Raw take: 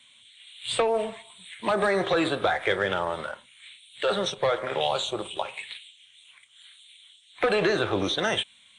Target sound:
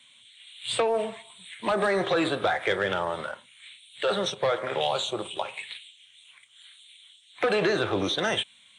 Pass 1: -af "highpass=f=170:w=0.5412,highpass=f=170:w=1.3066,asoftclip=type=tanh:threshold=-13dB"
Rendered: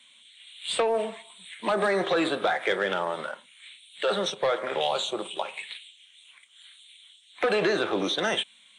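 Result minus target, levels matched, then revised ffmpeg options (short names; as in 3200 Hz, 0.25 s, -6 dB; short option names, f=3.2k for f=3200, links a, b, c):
125 Hz band -4.5 dB
-af "highpass=f=84:w=0.5412,highpass=f=84:w=1.3066,asoftclip=type=tanh:threshold=-13dB"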